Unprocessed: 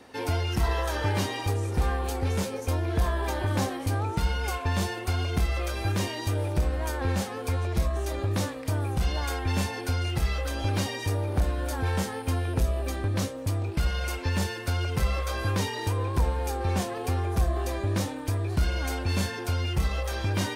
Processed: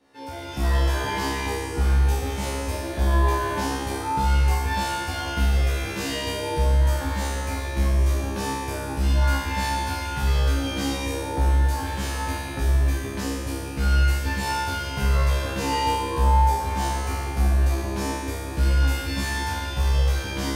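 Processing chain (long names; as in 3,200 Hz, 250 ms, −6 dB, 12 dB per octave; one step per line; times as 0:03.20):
automatic gain control gain up to 11.5 dB
tuned comb filter 68 Hz, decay 1.4 s, harmonics all, mix 100%
convolution reverb RT60 3.0 s, pre-delay 3 ms, DRR 4 dB
level +7 dB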